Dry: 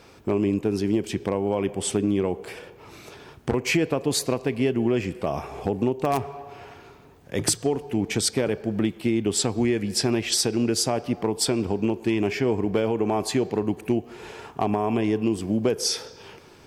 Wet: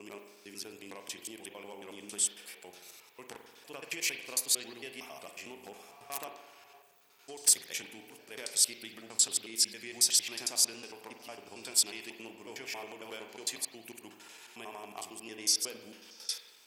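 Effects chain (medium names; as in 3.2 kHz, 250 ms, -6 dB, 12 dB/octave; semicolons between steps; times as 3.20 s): slices played last to first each 91 ms, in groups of 5; differentiator; spring tank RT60 1.1 s, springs 44 ms, chirp 50 ms, DRR 5.5 dB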